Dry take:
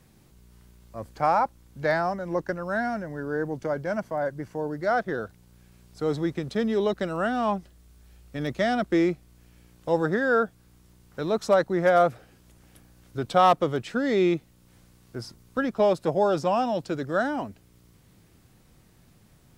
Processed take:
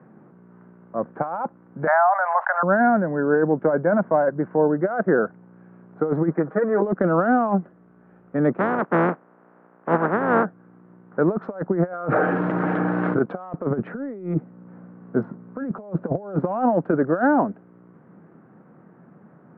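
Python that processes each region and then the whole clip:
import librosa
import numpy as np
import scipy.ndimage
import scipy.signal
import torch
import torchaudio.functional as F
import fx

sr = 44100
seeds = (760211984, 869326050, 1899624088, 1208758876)

y = fx.chain(x, sr, fx.steep_highpass(hz=670.0, slope=72),
    fx.dynamic_eq(hz=2500.0, q=0.82, threshold_db=-43.0, ratio=4.0, max_db=-5),
    fx.env_flatten(amount_pct=70), at=(1.87, 2.63))
y = fx.chain(y, sr, fx.lowpass(hz=1800.0, slope=24),
    fx.tilt_eq(slope=4.0),
    fx.comb(ms=6.3, depth=0.86), at=(6.31, 6.82))
y = fx.spec_flatten(y, sr, power=0.18, at=(8.58, 10.44), fade=0.02)
y = fx.lowpass(y, sr, hz=1000.0, slope=6, at=(8.58, 10.44), fade=0.02)
y = fx.chain(y, sr, fx.highpass(hz=310.0, slope=6),
    fx.comb(ms=6.5, depth=0.46),
    fx.env_flatten(amount_pct=70), at=(11.93, 13.19))
y = fx.chain(y, sr, fx.highpass(hz=110.0, slope=12),
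    fx.low_shelf(hz=420.0, db=8.5),
    fx.notch(hz=340.0, q=6.6), at=(13.7, 16.39))
y = fx.wiener(y, sr, points=9)
y = scipy.signal.sosfilt(scipy.signal.cheby1(3, 1.0, [170.0, 1500.0], 'bandpass', fs=sr, output='sos'), y)
y = fx.over_compress(y, sr, threshold_db=-28.0, ratio=-0.5)
y = y * librosa.db_to_amplitude(8.5)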